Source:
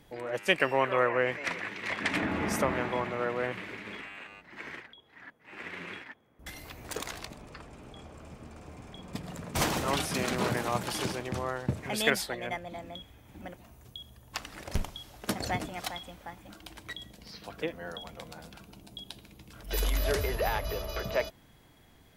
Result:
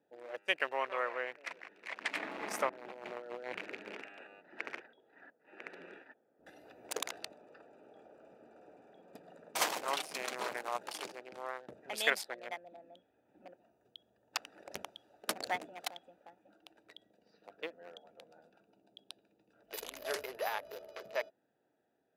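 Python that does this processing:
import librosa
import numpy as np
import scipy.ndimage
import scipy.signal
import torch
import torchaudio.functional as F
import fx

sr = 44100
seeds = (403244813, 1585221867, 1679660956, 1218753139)

y = fx.over_compress(x, sr, threshold_db=-37.0, ratio=-1.0, at=(2.69, 5.27))
y = fx.low_shelf(y, sr, hz=230.0, db=-7.0, at=(7.3, 11.71))
y = fx.wiener(y, sr, points=41)
y = scipy.signal.sosfilt(scipy.signal.butter(2, 570.0, 'highpass', fs=sr, output='sos'), y)
y = fx.rider(y, sr, range_db=10, speed_s=2.0)
y = y * librosa.db_to_amplitude(-5.5)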